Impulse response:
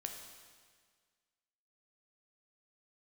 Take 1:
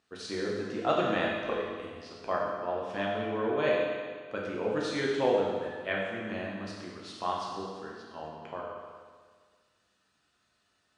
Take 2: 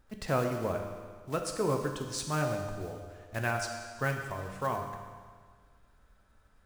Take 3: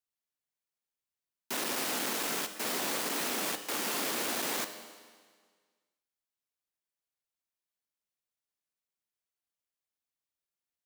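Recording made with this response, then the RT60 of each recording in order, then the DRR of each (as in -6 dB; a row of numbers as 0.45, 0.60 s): 2; 1.7, 1.7, 1.7 s; -4.5, 3.0, 8.5 dB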